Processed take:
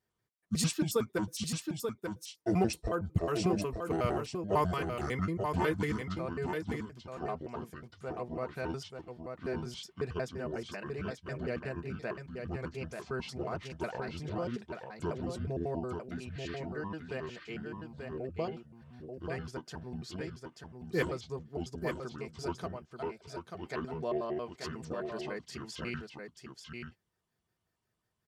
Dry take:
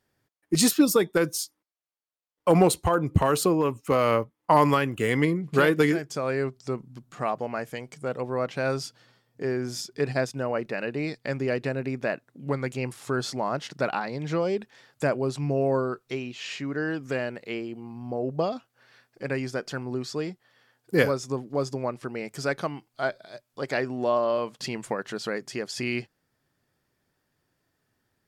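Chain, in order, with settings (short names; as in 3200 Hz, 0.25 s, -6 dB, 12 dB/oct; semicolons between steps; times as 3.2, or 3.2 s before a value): trilling pitch shifter -8 st, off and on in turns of 91 ms; wow and flutter 24 cents; notch comb 280 Hz; on a send: echo 0.886 s -5.5 dB; on the sum: gain -8.5 dB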